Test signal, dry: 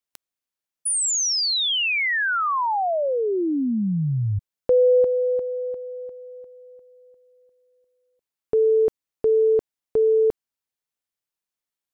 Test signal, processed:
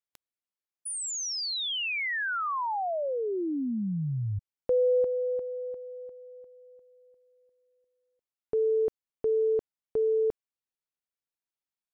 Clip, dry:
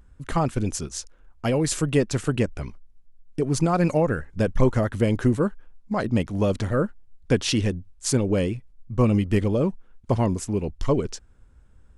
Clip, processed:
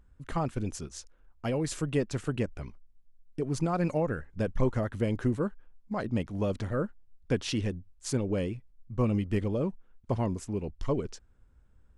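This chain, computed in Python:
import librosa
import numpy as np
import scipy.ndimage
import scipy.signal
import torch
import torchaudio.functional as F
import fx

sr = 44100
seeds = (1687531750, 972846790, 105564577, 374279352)

y = fx.high_shelf(x, sr, hz=5300.0, db=-5.5)
y = F.gain(torch.from_numpy(y), -7.5).numpy()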